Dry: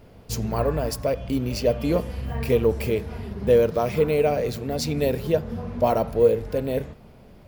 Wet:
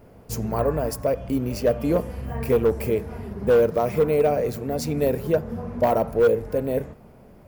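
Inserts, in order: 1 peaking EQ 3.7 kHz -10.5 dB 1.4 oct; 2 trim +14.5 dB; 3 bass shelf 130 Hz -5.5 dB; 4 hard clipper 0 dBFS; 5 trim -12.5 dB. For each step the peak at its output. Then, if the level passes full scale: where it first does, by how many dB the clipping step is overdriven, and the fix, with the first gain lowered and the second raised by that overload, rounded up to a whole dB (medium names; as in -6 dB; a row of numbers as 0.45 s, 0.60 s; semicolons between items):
-7.5 dBFS, +7.0 dBFS, +6.5 dBFS, 0.0 dBFS, -12.5 dBFS; step 2, 6.5 dB; step 2 +7.5 dB, step 5 -5.5 dB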